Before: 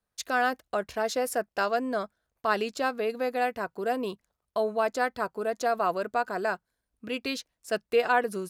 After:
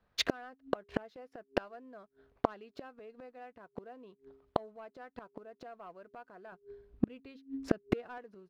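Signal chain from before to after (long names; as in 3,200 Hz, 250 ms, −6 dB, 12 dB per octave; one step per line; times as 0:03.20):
high-frequency loss of the air 290 metres
leveller curve on the samples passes 1
hum removal 135.1 Hz, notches 3
0:06.52–0:08.18: low-shelf EQ 300 Hz +10 dB
gate with flip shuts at −27 dBFS, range −38 dB
level +13.5 dB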